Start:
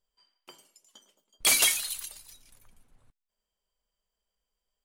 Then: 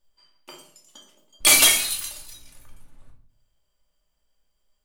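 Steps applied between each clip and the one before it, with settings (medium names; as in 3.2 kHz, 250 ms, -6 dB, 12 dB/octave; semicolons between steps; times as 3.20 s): simulated room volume 650 m³, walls furnished, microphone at 2.5 m; trim +5 dB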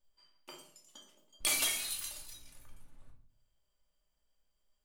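compression 2:1, threshold -29 dBFS, peak gain reduction 10 dB; trim -7 dB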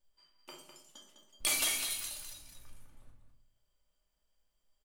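delay 204 ms -8 dB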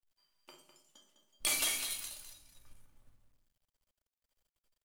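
companding laws mixed up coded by A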